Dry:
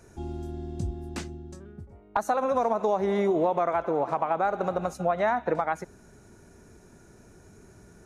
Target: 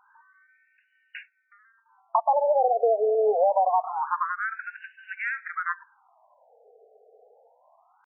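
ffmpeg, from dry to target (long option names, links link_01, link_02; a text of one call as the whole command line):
ffmpeg -i in.wav -af "acontrast=25,asetrate=48091,aresample=44100,atempo=0.917004,afftfilt=real='re*between(b*sr/1024,550*pow(2100/550,0.5+0.5*sin(2*PI*0.25*pts/sr))/1.41,550*pow(2100/550,0.5+0.5*sin(2*PI*0.25*pts/sr))*1.41)':imag='im*between(b*sr/1024,550*pow(2100/550,0.5+0.5*sin(2*PI*0.25*pts/sr))/1.41,550*pow(2100/550,0.5+0.5*sin(2*PI*0.25*pts/sr))*1.41)':win_size=1024:overlap=0.75" out.wav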